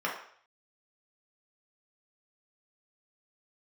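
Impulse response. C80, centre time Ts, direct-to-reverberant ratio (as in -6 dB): 9.5 dB, 32 ms, -3.5 dB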